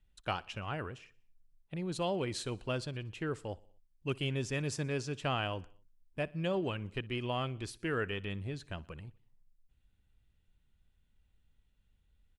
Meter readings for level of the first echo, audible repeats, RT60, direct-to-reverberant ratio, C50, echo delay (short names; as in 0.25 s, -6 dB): -23.5 dB, 3, none, none, none, 61 ms